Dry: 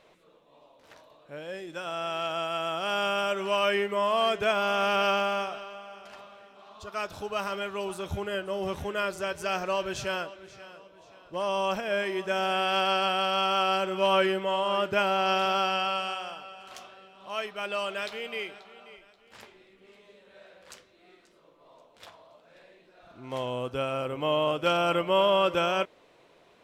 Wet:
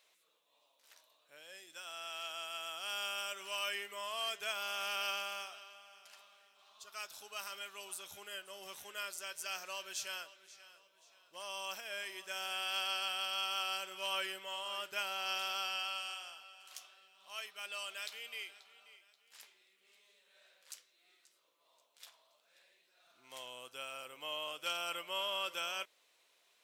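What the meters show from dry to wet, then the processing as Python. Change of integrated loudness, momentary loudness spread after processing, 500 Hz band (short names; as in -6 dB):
-11.5 dB, 19 LU, -21.0 dB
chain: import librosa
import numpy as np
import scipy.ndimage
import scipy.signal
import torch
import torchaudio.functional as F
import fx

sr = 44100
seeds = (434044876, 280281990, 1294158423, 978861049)

y = np.diff(x, prepend=0.0)
y = y * librosa.db_to_amplitude(1.0)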